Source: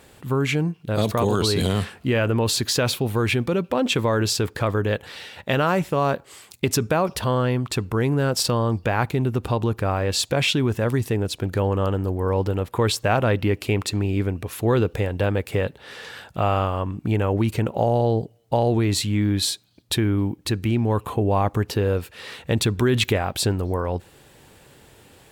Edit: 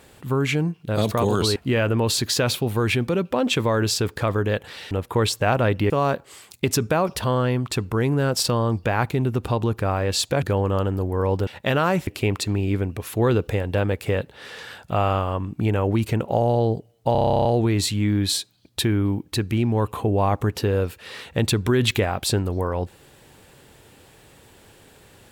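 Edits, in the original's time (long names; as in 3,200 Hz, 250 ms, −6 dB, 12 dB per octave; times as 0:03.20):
0:01.56–0:01.95: remove
0:05.30–0:05.90: swap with 0:12.54–0:13.53
0:10.42–0:11.49: remove
0:18.58: stutter 0.03 s, 12 plays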